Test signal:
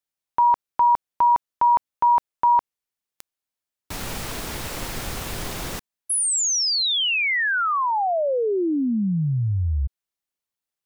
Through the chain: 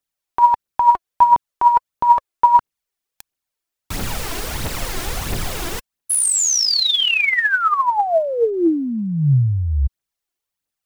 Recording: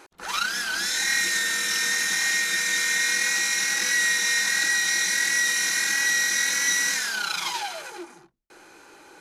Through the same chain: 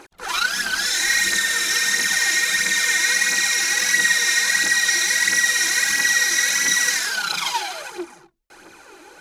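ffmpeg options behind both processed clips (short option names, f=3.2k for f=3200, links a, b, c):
-af "aphaser=in_gain=1:out_gain=1:delay=3.1:decay=0.54:speed=1.5:type=triangular,volume=3dB"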